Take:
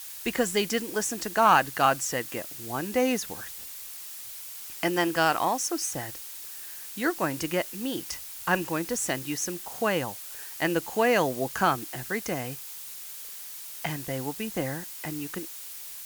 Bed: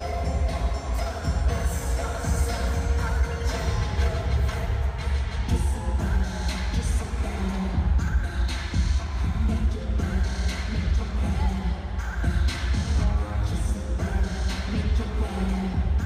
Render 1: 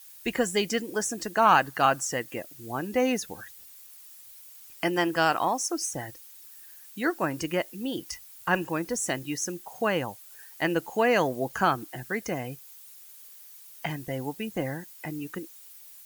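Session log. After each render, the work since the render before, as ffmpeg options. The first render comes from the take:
-af "afftdn=nr=12:nf=-41"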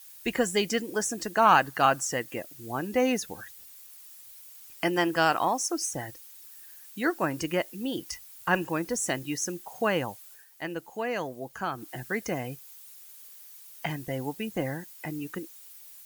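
-filter_complex "[0:a]asplit=3[s0][s1][s2];[s0]atrim=end=10.45,asetpts=PTS-STARTPTS,afade=t=out:st=10.27:d=0.18:silence=0.375837[s3];[s1]atrim=start=10.45:end=11.72,asetpts=PTS-STARTPTS,volume=0.376[s4];[s2]atrim=start=11.72,asetpts=PTS-STARTPTS,afade=t=in:d=0.18:silence=0.375837[s5];[s3][s4][s5]concat=n=3:v=0:a=1"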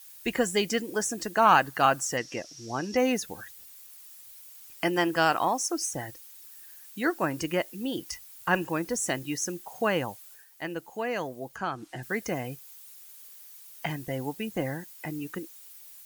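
-filter_complex "[0:a]asettb=1/sr,asplit=3[s0][s1][s2];[s0]atrim=end=2.174[s3];[s1]atrim=start=2.17:end=2.97,asetpts=PTS-STARTPTS,afade=t=in:d=0.004:c=qsin,afade=t=out:st=0.796:d=0.004:c=qsin,lowpass=f=5600:t=q:w=12[s4];[s2]atrim=start=2.966[s5];[s3][s4]acrossfade=d=0.004:c1=hsin:c2=qsin[s6];[s6][s5]acrossfade=d=0.004:c1=qsin:c2=hsin,asettb=1/sr,asplit=3[s7][s8][s9];[s7]atrim=end=11.564[s10];[s8]atrim=start=11.56:end=12.03,asetpts=PTS-STARTPTS,afade=t=in:d=0.004:c=qsin,afade=t=out:st=0.466:d=0.004:c=qsin,lowpass=7300[s11];[s9]atrim=start=12.026[s12];[s10][s11]acrossfade=d=0.004:c1=hsin:c2=qsin[s13];[s13][s12]acrossfade=d=0.004:c1=qsin:c2=hsin"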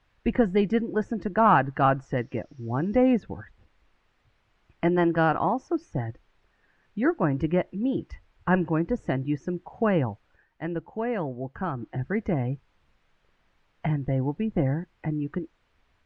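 -af "lowpass=2300,aemphasis=mode=reproduction:type=riaa"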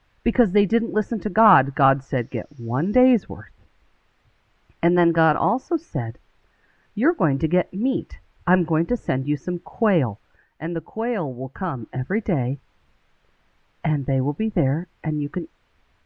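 -af "volume=1.68"

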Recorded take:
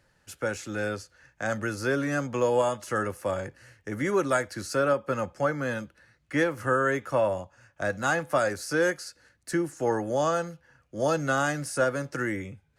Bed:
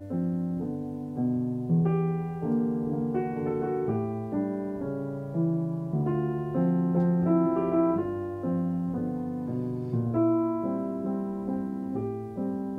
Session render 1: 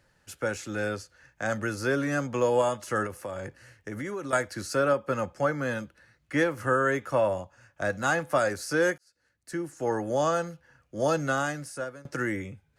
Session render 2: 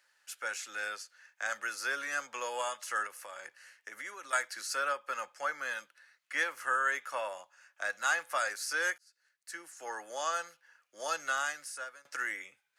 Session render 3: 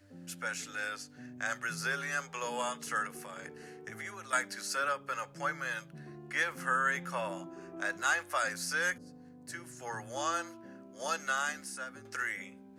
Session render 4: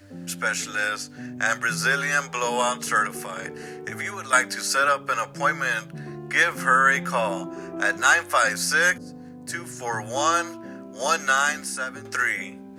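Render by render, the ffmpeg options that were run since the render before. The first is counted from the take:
-filter_complex "[0:a]asettb=1/sr,asplit=3[s0][s1][s2];[s0]atrim=end=3.064[s3];[s1]atrim=start=3.06:end=4.33,asetpts=PTS-STARTPTS,afade=t=in:d=0.004:c=qsin,afade=t=out:st=1.266:d=0.004:c=qsin,acompressor=threshold=0.0282:ratio=6:attack=3.2:release=140:knee=1:detection=peak[s4];[s2]atrim=start=4.326[s5];[s3][s4]acrossfade=d=0.004:c1=hsin:c2=qsin[s6];[s6][s5]acrossfade=d=0.004:c1=qsin:c2=hsin,asplit=3[s7][s8][s9];[s7]atrim=end=8.98,asetpts=PTS-STARTPTS,afade=t=out:st=8.976:d=0.004:c=hsin[s10];[s8]atrim=start=8.98:end=12.05,asetpts=PTS-STARTPTS,afade=t=in:d=1.15,afade=t=out:st=2.2:d=0.87:silence=0.0944061[s11];[s9]atrim=start=12.05,asetpts=PTS-STARTPTS,afade=t=in:d=0.004:c=hsin:silence=0.0944061[s12];[s10][s11][s12]concat=n=3:v=0:a=1"
-af "highpass=1300"
-filter_complex "[1:a]volume=0.0841[s0];[0:a][s0]amix=inputs=2:normalize=0"
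-af "volume=3.98"

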